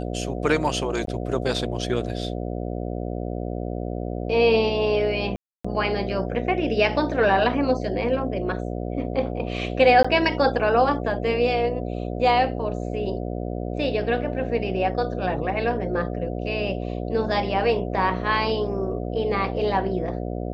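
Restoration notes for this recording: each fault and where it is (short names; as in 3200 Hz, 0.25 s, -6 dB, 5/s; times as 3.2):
buzz 60 Hz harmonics 12 -29 dBFS
1.06–1.07 gap 13 ms
5.36–5.64 gap 0.285 s
10.03–10.04 gap 15 ms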